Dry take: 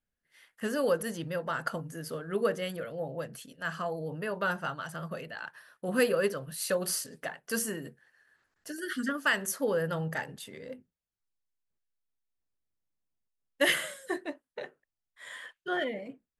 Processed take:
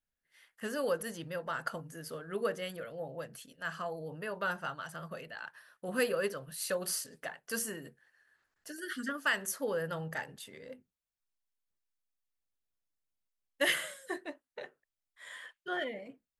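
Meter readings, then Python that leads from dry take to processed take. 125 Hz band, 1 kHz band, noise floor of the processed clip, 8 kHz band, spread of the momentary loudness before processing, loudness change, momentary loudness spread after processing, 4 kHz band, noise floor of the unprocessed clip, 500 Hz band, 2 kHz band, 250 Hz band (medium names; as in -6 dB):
-7.0 dB, -3.5 dB, under -85 dBFS, -3.0 dB, 16 LU, -4.5 dB, 16 LU, -3.0 dB, under -85 dBFS, -5.0 dB, -3.0 dB, -6.5 dB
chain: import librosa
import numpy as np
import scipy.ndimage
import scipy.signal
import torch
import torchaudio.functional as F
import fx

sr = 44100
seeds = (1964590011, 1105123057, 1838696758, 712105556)

y = fx.peak_eq(x, sr, hz=180.0, db=-4.0, octaves=2.9)
y = y * librosa.db_to_amplitude(-3.0)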